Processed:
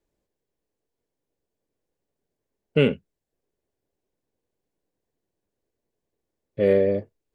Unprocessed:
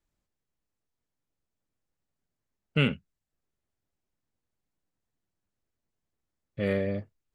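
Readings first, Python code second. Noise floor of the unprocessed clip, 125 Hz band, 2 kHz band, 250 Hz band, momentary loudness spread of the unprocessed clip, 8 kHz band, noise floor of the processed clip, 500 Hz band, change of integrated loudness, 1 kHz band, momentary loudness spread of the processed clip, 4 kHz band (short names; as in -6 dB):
under -85 dBFS, +1.5 dB, +0.5 dB, +4.5 dB, 14 LU, n/a, -84 dBFS, +11.5 dB, +7.0 dB, +1.0 dB, 16 LU, +0.5 dB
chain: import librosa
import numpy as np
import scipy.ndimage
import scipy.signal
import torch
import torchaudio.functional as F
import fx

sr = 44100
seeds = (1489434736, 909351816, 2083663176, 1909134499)

y = fx.peak_eq(x, sr, hz=440.0, db=13.0, octaves=1.3)
y = fx.notch(y, sr, hz=1300.0, q=8.2)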